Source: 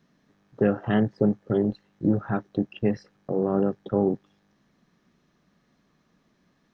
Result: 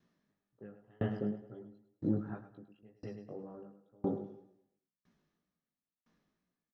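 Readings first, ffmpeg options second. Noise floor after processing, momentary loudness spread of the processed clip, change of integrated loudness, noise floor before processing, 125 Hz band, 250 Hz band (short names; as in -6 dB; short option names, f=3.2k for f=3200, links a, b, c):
under -85 dBFS, 21 LU, -13.5 dB, -68 dBFS, -12.5 dB, -14.5 dB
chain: -filter_complex "[0:a]asplit=2[a][b];[b]aecho=0:1:105|210|315|420|525|630|735:0.398|0.235|0.139|0.0818|0.0482|0.0285|0.0168[c];[a][c]amix=inputs=2:normalize=0,flanger=delay=16.5:depth=3.1:speed=2,aeval=exprs='val(0)*pow(10,-35*if(lt(mod(0.99*n/s,1),2*abs(0.99)/1000),1-mod(0.99*n/s,1)/(2*abs(0.99)/1000),(mod(0.99*n/s,1)-2*abs(0.99)/1000)/(1-2*abs(0.99)/1000))/20)':c=same,volume=-4.5dB"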